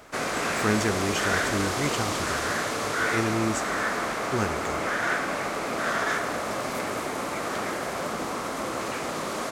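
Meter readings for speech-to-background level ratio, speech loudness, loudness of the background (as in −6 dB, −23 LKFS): −2.5 dB, −30.5 LKFS, −28.0 LKFS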